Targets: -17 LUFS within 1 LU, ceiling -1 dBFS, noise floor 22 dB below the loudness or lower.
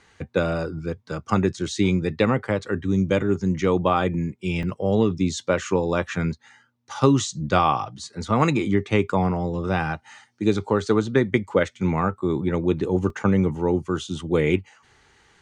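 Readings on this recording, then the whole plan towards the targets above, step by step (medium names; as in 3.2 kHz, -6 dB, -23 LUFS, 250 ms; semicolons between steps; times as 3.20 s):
dropouts 2; longest dropout 2.5 ms; loudness -23.5 LUFS; peak level -4.0 dBFS; loudness target -17.0 LUFS
-> interpolate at 4.63/13.10 s, 2.5 ms; trim +6.5 dB; peak limiter -1 dBFS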